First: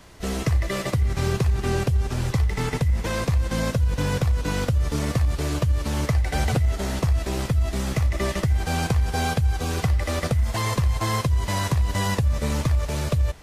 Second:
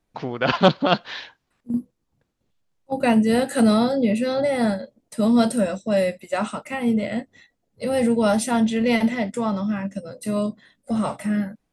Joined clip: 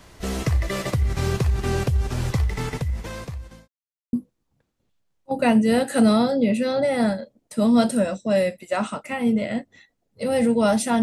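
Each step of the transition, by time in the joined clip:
first
2.34–3.68 fade out linear
3.68–4.13 mute
4.13 switch to second from 1.74 s

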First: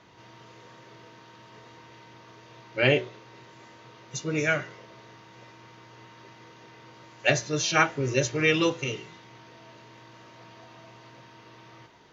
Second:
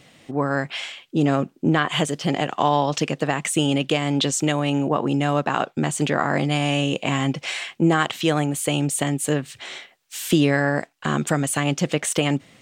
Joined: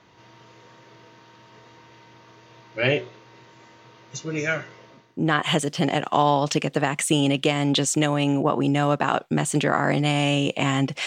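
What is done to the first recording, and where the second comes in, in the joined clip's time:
first
5.11 switch to second from 1.57 s, crossfade 0.48 s quadratic

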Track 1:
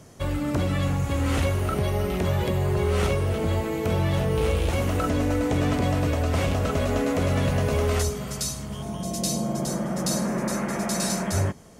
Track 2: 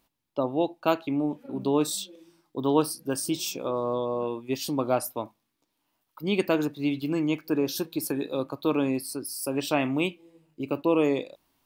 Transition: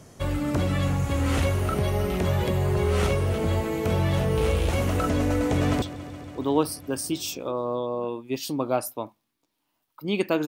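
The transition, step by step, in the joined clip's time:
track 1
5.54–5.82 echo throw 0.14 s, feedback 85%, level -15 dB
5.82 switch to track 2 from 2.01 s

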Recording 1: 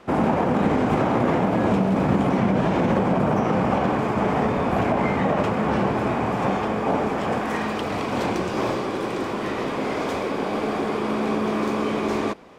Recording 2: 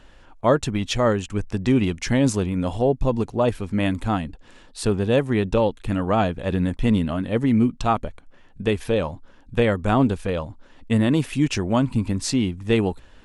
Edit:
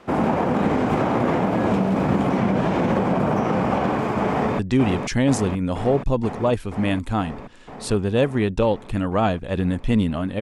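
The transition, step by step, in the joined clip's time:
recording 1
4.31–4.59 echo throw 0.48 s, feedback 80%, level -5 dB
4.59 switch to recording 2 from 1.54 s

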